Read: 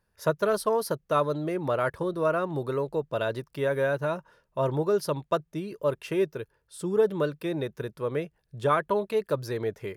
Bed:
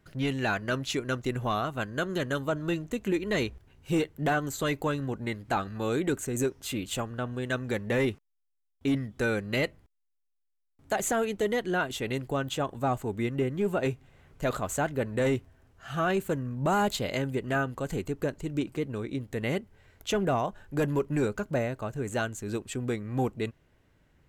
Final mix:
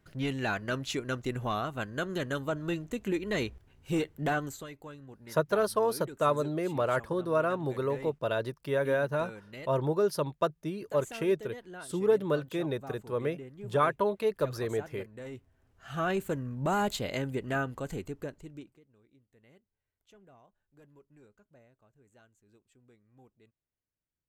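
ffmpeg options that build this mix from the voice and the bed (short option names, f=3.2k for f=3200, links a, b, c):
-filter_complex "[0:a]adelay=5100,volume=-2dB[a];[1:a]volume=11dB,afade=t=out:st=4.41:d=0.26:silence=0.199526,afade=t=in:st=15.31:d=0.72:silence=0.199526,afade=t=out:st=17.72:d=1.08:silence=0.0375837[b];[a][b]amix=inputs=2:normalize=0"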